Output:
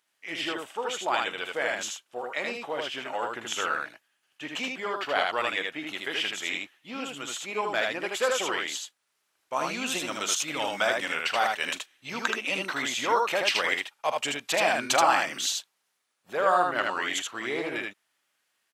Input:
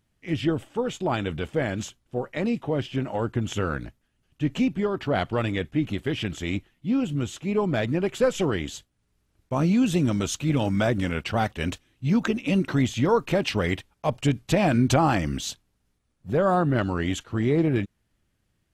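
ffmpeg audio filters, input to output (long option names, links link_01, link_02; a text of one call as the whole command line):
ffmpeg -i in.wav -filter_complex "[0:a]highpass=870,asplit=2[link_01][link_02];[link_02]aecho=0:1:42|78:0.158|0.708[link_03];[link_01][link_03]amix=inputs=2:normalize=0,volume=3.5dB" out.wav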